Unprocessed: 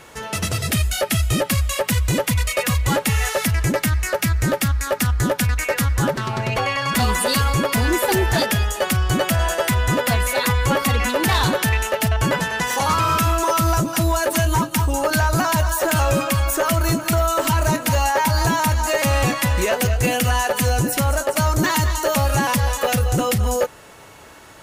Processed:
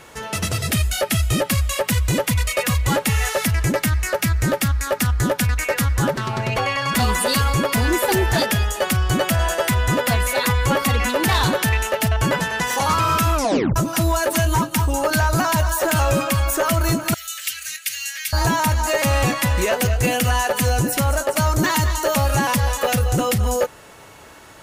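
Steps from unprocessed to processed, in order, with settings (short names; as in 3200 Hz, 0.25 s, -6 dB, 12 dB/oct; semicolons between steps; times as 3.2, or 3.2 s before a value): 13.34 tape stop 0.42 s; 17.14–18.33 inverse Chebyshev high-pass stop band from 1000 Hz, stop band 40 dB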